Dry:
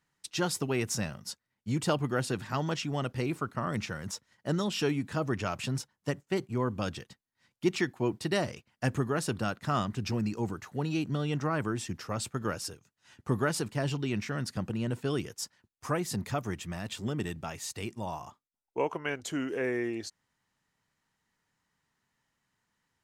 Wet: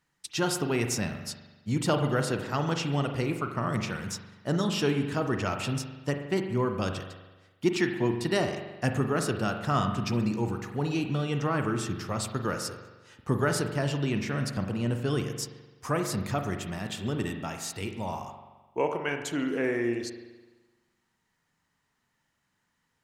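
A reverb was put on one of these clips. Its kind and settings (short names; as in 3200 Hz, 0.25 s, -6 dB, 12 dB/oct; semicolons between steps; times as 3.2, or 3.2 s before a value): spring tank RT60 1.2 s, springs 42 ms, chirp 30 ms, DRR 5.5 dB; gain +2 dB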